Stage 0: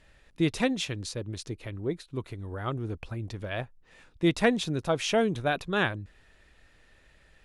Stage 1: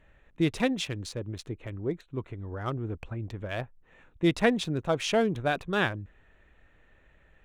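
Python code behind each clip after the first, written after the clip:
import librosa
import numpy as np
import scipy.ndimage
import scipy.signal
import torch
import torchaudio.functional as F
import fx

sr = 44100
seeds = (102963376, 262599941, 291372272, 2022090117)

y = fx.wiener(x, sr, points=9)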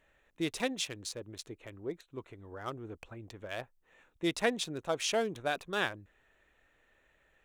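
y = fx.bass_treble(x, sr, bass_db=-10, treble_db=8)
y = y * 10.0 ** (-5.0 / 20.0)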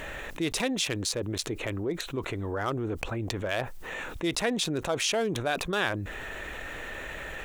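y = fx.env_flatten(x, sr, amount_pct=70)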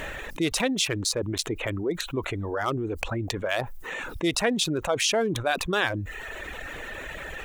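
y = fx.dereverb_blind(x, sr, rt60_s=0.99)
y = y * 10.0 ** (4.0 / 20.0)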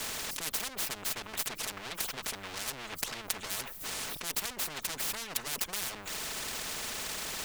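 y = fx.lower_of_two(x, sr, delay_ms=4.6)
y = fx.spectral_comp(y, sr, ratio=10.0)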